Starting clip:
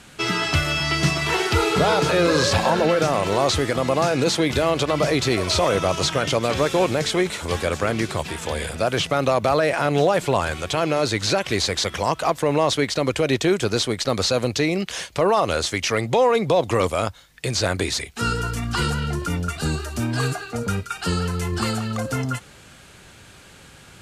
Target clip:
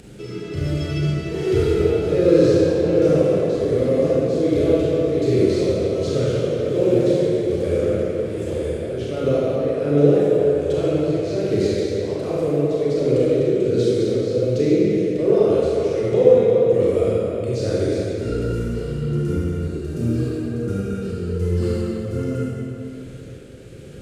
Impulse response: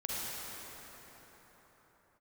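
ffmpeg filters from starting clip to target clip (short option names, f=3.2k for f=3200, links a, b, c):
-filter_complex "[0:a]lowshelf=f=640:t=q:w=3:g=11,tremolo=f=1.3:d=0.69,acompressor=mode=upward:threshold=-23dB:ratio=2.5[a];[1:a]atrim=start_sample=2205,asetrate=70560,aresample=44100[b];[a][b]afir=irnorm=-1:irlink=0,volume=-9dB"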